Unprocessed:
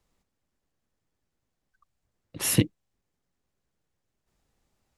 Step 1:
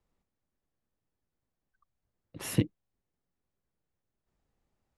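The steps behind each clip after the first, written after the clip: treble shelf 2.7 kHz -9.5 dB; trim -4.5 dB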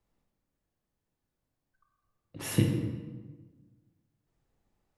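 reverberation RT60 1.4 s, pre-delay 18 ms, DRR 1 dB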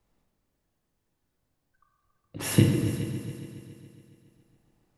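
multi-head delay 139 ms, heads all three, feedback 47%, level -16 dB; trim +5.5 dB

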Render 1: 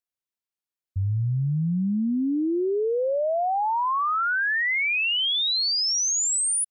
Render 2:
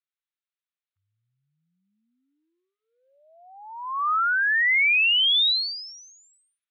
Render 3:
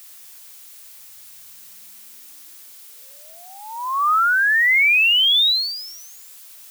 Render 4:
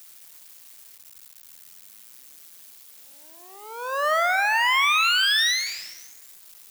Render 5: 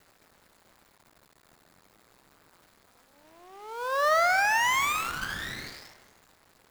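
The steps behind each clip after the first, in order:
dynamic bell 2.8 kHz, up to +5 dB, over -40 dBFS, Q 0.73; elliptic band-pass 1.2–3.9 kHz, stop band 50 dB
added noise blue -47 dBFS; dynamic bell 560 Hz, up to +7 dB, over -45 dBFS, Q 0.93; trim +4 dB
cycle switcher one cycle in 2, muted; on a send at -12 dB: reverberation RT60 1.4 s, pre-delay 10 ms; on the sum: trim -2 dB
median filter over 15 samples

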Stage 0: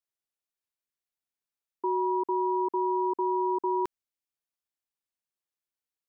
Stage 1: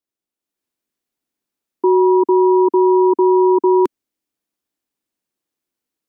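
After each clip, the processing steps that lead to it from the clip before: peaking EQ 280 Hz +13 dB 1.4 oct; level rider gain up to 7 dB; trim +1 dB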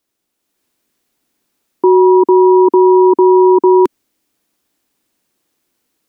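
loudness maximiser +16 dB; trim -1 dB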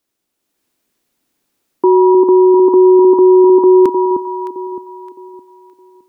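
echo whose repeats swap between lows and highs 307 ms, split 960 Hz, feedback 55%, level -5.5 dB; trim -1 dB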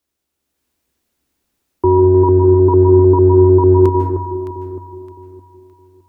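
octave divider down 2 oct, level 0 dB; on a send at -6 dB: reverberation RT60 0.75 s, pre-delay 141 ms; on the sum: trim -3 dB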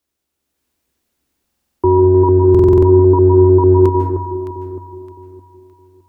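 buffer glitch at 1.46/2.50 s, samples 2048, times 6

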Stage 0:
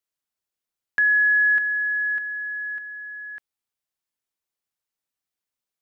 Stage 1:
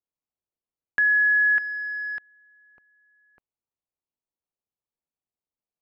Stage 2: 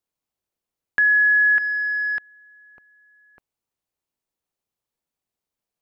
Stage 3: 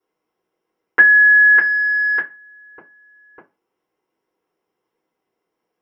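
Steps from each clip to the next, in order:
local Wiener filter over 25 samples
peak limiter -20 dBFS, peak gain reduction 4 dB; trim +7 dB
reverberation RT60 0.25 s, pre-delay 3 ms, DRR -6.5 dB; trim -5.5 dB

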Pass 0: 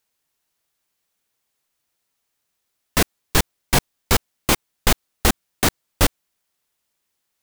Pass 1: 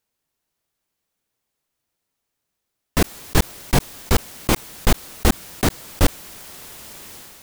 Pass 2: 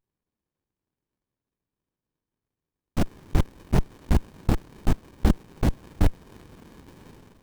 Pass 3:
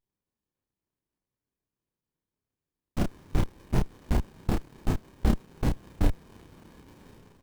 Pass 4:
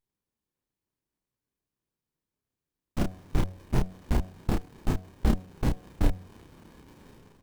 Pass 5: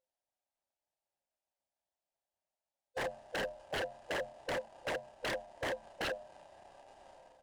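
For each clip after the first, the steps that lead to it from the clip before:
tilt shelf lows +3.5 dB, about 720 Hz; decay stretcher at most 26 dB/s; trim -1 dB
dynamic bell 2.7 kHz, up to -6 dB, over -37 dBFS, Q 0.71; sliding maximum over 65 samples; trim -2.5 dB
doubling 31 ms -3.5 dB; trim -5 dB
de-hum 92.41 Hz, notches 8
split-band scrambler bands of 500 Hz; resampled via 22.05 kHz; wavefolder -25 dBFS; trim -5.5 dB

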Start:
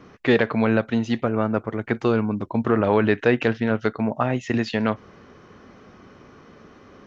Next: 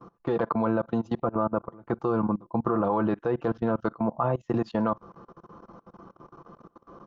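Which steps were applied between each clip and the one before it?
resonant high shelf 1.5 kHz -10 dB, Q 3; comb 5.9 ms, depth 58%; level held to a coarse grid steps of 23 dB; trim -1.5 dB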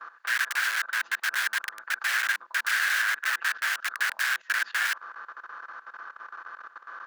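spectral levelling over time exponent 0.6; integer overflow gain 23.5 dB; resonant high-pass 1.6 kHz, resonance Q 7.5; trim -3.5 dB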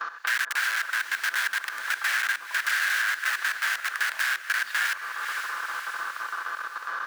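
harmonic-percussive split percussive -4 dB; echo that smears into a reverb 506 ms, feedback 44%, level -13 dB; three bands compressed up and down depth 70%; trim +2.5 dB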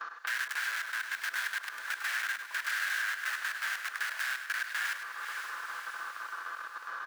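delay 101 ms -9 dB; trim -8 dB

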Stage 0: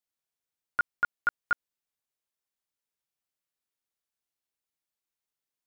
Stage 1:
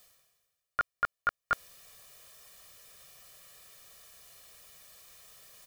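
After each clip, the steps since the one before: comb 1.7 ms, depth 77%; reverse; upward compressor, threshold -29 dBFS; reverse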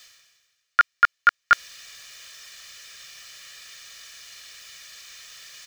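high-order bell 3.1 kHz +15 dB 2.7 oct; trim +1 dB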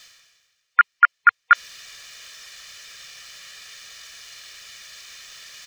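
median filter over 3 samples; spectral gate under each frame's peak -30 dB strong; trim +3 dB

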